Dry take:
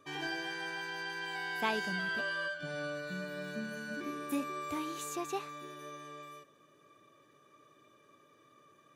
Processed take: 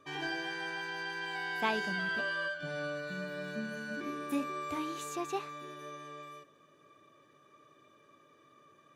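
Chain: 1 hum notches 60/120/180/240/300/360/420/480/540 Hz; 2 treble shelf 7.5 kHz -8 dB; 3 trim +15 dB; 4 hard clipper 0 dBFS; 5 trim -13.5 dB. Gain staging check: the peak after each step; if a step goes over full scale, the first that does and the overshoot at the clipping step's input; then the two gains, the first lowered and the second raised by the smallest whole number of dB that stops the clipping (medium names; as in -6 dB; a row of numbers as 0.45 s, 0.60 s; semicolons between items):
-17.0 dBFS, -17.5 dBFS, -2.5 dBFS, -2.5 dBFS, -16.0 dBFS; nothing clips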